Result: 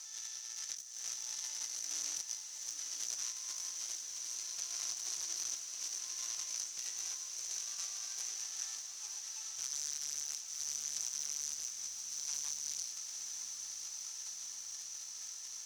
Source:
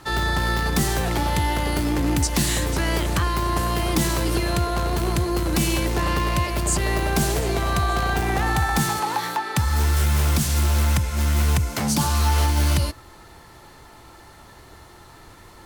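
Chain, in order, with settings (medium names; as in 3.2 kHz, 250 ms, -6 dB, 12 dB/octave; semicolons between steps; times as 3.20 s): one-bit comparator; band-pass filter 6 kHz, Q 13; hard clipper -33 dBFS, distortion -19 dB; compressor with a negative ratio -46 dBFS, ratio -0.5; echo that smears into a reverb 956 ms, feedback 73%, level -7 dB; trim +3 dB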